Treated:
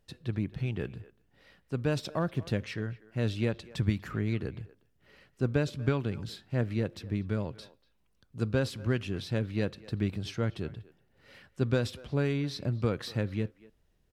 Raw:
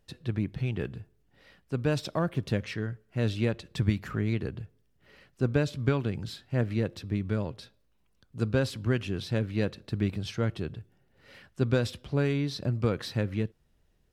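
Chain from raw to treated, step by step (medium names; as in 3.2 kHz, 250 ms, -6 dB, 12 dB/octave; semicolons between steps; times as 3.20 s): speakerphone echo 240 ms, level -19 dB; trim -2 dB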